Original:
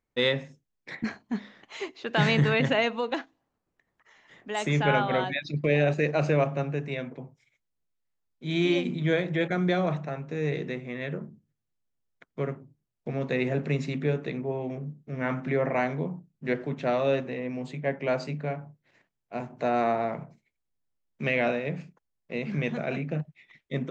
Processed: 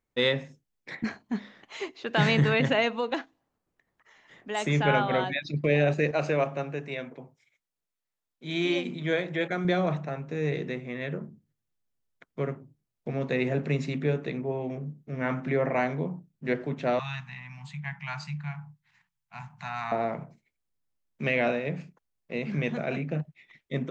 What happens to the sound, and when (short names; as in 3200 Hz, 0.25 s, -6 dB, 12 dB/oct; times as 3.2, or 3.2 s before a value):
6.11–9.65 low shelf 210 Hz -10 dB
16.99–19.92 elliptic band-stop 180–870 Hz